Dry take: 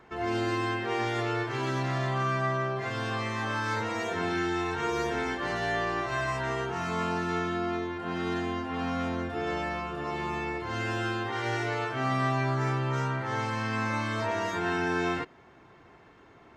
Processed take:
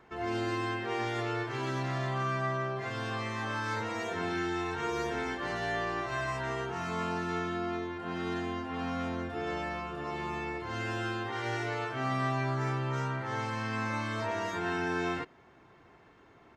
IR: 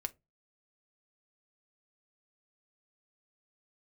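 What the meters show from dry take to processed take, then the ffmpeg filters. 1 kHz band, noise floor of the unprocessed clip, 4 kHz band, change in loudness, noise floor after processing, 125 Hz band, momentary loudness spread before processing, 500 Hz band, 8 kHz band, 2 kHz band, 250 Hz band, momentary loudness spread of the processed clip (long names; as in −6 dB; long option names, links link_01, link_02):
−3.5 dB, −55 dBFS, −3.5 dB, −3.5 dB, −59 dBFS, −3.5 dB, 4 LU, −3.5 dB, −3.5 dB, −3.5 dB, −3.5 dB, 4 LU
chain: -af "aresample=32000,aresample=44100,volume=-3.5dB"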